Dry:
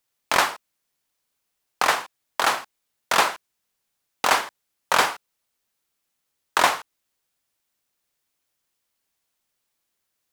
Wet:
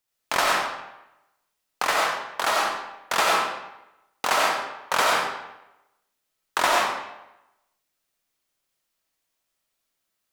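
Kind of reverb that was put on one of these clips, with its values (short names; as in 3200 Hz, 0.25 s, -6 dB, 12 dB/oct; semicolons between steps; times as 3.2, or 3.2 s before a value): digital reverb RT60 0.93 s, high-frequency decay 0.8×, pre-delay 50 ms, DRR -3 dB; gain -4.5 dB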